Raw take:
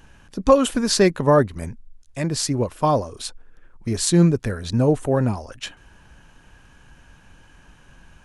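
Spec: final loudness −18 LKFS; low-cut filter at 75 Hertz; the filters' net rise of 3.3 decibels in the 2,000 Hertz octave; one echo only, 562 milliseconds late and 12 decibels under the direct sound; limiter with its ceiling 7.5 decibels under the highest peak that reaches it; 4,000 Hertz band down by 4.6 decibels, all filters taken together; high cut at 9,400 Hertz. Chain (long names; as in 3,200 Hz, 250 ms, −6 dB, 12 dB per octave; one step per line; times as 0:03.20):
high-pass filter 75 Hz
low-pass filter 9,400 Hz
parametric band 2,000 Hz +5.5 dB
parametric band 4,000 Hz −7 dB
brickwall limiter −10 dBFS
single-tap delay 562 ms −12 dB
level +5 dB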